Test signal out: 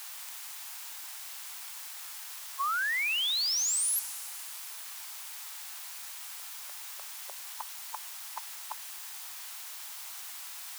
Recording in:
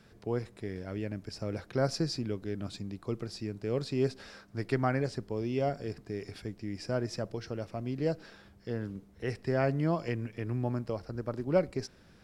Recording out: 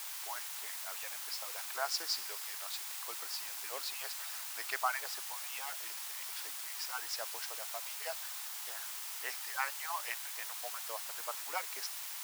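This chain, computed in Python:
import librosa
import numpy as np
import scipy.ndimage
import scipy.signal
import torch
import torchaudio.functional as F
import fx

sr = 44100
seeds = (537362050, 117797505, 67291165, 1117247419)

p1 = fx.hpss_only(x, sr, part='percussive')
p2 = fx.quant_dither(p1, sr, seeds[0], bits=6, dither='triangular')
p3 = p1 + (p2 * librosa.db_to_amplitude(-7.0))
p4 = scipy.signal.sosfilt(scipy.signal.cheby1(3, 1.0, 840.0, 'highpass', fs=sr, output='sos'), p3)
y = fx.echo_wet_highpass(p4, sr, ms=63, feedback_pct=85, hz=4700.0, wet_db=-16)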